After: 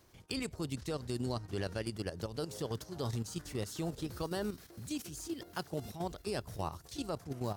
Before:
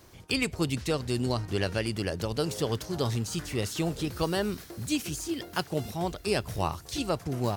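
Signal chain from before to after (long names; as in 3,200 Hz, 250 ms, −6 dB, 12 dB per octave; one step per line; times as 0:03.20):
output level in coarse steps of 10 dB
dynamic equaliser 2,500 Hz, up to −6 dB, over −52 dBFS, Q 1.7
level −5 dB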